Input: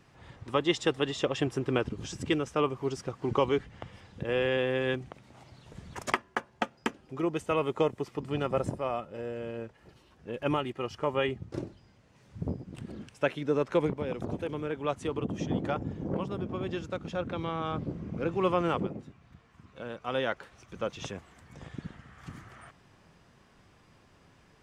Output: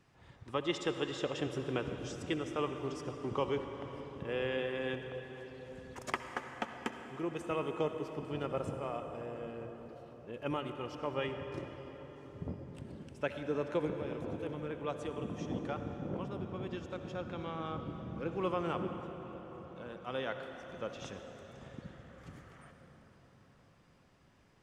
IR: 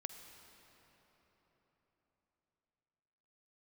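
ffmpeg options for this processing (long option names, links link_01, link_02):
-filter_complex "[1:a]atrim=start_sample=2205,asetrate=32193,aresample=44100[link_01];[0:a][link_01]afir=irnorm=-1:irlink=0,volume=-5.5dB"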